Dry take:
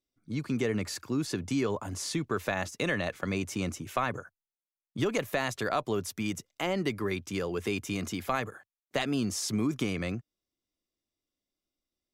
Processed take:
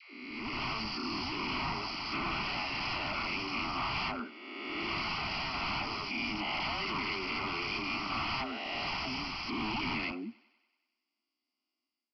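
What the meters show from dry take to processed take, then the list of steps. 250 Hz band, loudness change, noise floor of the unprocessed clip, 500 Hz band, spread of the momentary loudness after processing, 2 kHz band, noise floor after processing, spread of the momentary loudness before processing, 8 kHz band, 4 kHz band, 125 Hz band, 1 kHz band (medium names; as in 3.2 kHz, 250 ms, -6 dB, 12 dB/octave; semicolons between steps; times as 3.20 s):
-7.5 dB, -2.5 dB, under -85 dBFS, -11.5 dB, 4 LU, +1.5 dB, under -85 dBFS, 5 LU, -17.5 dB, +4.5 dB, -9.0 dB, +1.5 dB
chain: reverse spectral sustain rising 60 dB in 1.76 s; elliptic high-pass 230 Hz, stop band 40 dB; treble shelf 3.2 kHz +8.5 dB; phase dispersion lows, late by 145 ms, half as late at 480 Hz; wavefolder -28.5 dBFS; static phaser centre 2.5 kHz, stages 8; level rider gain up to 8.5 dB; on a send: thinning echo 95 ms, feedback 66%, high-pass 350 Hz, level -23 dB; on the sum: resampled via 11.025 kHz; trim -5.5 dB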